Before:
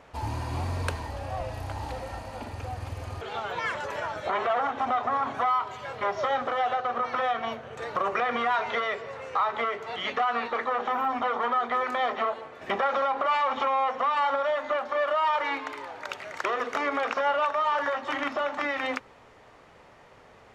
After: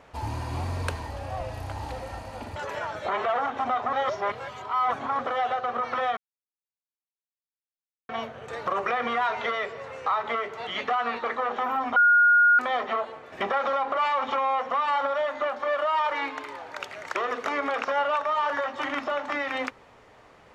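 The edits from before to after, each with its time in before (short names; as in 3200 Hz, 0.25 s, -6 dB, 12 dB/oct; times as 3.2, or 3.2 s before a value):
2.56–3.77 cut
5.14–6.4 reverse
7.38 insert silence 1.92 s
11.25–11.88 bleep 1430 Hz -14.5 dBFS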